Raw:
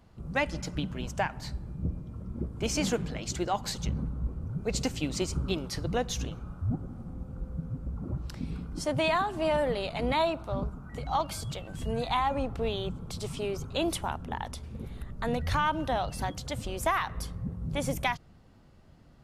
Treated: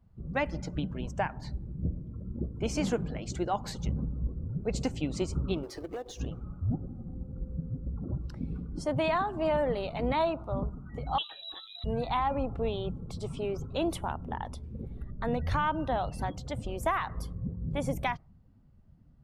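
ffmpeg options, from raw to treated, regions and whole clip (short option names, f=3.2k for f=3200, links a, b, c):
-filter_complex "[0:a]asettb=1/sr,asplit=3[a][b][c];[a]atrim=end=5.634[d];[b]atrim=start=5.63:end=6.2,asetpts=PTS-STARTPTS,afade=t=in:d=0.004:c=qsin,afade=t=out:st=0.566:d=0.004:c=qsin,lowshelf=f=250:t=q:w=3:g=-10,acrusher=bits=2:mode=log:mix=0:aa=0.000001,acompressor=threshold=-34dB:ratio=5:attack=3.2:release=140:knee=1:detection=peak[e];[c]atrim=start=6.196[f];[d][e]acrossfade=d=0.004:c1=hsin:c2=qsin[g];[g][f]acrossfade=d=0.004:c1=qsin:c2=hsin,asettb=1/sr,asplit=3[h][i][j];[h]atrim=end=11.184[k];[i]atrim=start=11.18:end=11.84,asetpts=PTS-STARTPTS,afade=t=in:d=0.004:c=qsin,afade=t=out:st=0.656:d=0.004:c=qsin,lowpass=f=3.4k:t=q:w=0.5098,lowpass=f=3.4k:t=q:w=0.6013,lowpass=f=3.4k:t=q:w=0.9,lowpass=f=3.4k:t=q:w=2.563,afreqshift=-4000,aeval=exprs='sgn(val(0))*max(abs(val(0))-0.00119,0)':c=same[l];[j]atrim=start=11.836[m];[k][l]acrossfade=d=0.004:c1=hsin:c2=qsin[n];[n][m]acrossfade=d=0.004:c1=qsin:c2=hsin,highshelf=f=6.6k:g=5,afftdn=nr=13:nf=-48,highshelf=f=2.7k:g=-11.5"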